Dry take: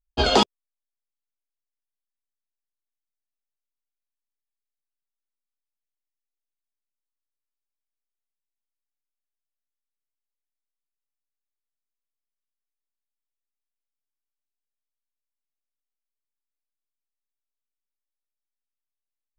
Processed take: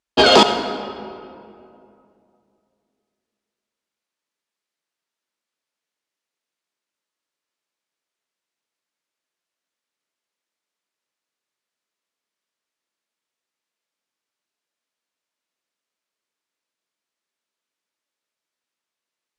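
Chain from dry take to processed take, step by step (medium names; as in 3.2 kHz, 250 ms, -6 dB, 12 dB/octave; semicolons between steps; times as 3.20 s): high-pass 230 Hz 12 dB/octave; band-stop 770 Hz, Q 12; in parallel at +0.5 dB: compression, threshold -24 dBFS, peak gain reduction 10.5 dB; on the sum: saturation -13 dBFS, distortion -12 dB; distance through air 57 m; reverberation RT60 2.5 s, pre-delay 54 ms, DRR 8.5 dB; trim +8.5 dB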